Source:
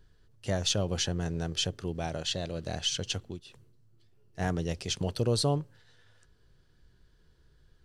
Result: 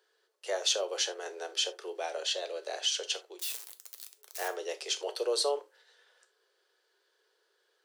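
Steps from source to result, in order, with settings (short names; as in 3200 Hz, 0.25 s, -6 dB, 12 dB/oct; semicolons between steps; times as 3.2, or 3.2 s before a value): 3.39–4.48 switching spikes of -27.5 dBFS; steep high-pass 380 Hz 72 dB/oct; non-linear reverb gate 0.1 s falling, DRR 8 dB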